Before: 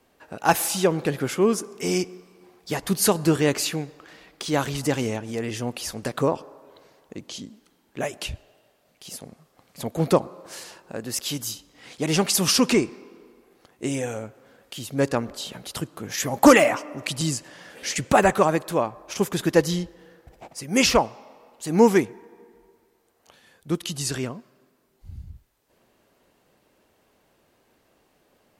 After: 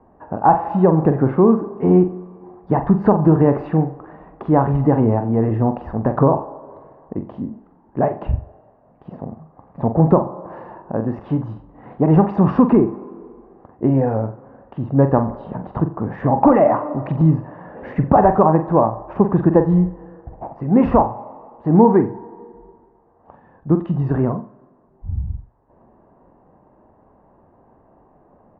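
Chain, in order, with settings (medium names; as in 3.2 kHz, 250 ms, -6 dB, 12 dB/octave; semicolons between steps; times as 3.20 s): low-pass 1.1 kHz 24 dB/octave; comb 1.1 ms, depth 31%; compression 3:1, threshold -22 dBFS, peak gain reduction 10.5 dB; on a send: flutter echo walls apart 7.6 m, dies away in 0.3 s; on the sum: loudness maximiser +13 dB; trim -1 dB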